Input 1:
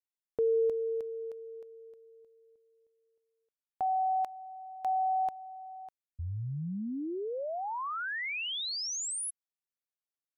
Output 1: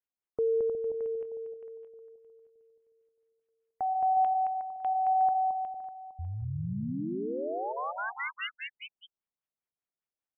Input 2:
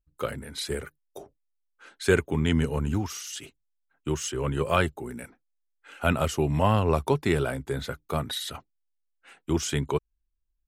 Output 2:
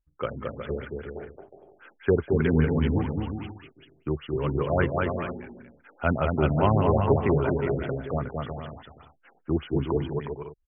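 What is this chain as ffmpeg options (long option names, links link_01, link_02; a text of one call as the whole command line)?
ffmpeg -i in.wav -af "aecho=1:1:220|363|456|516.4|555.6:0.631|0.398|0.251|0.158|0.1,afftfilt=real='re*lt(b*sr/1024,770*pow(3500/770,0.5+0.5*sin(2*PI*5*pts/sr)))':imag='im*lt(b*sr/1024,770*pow(3500/770,0.5+0.5*sin(2*PI*5*pts/sr)))':win_size=1024:overlap=0.75" out.wav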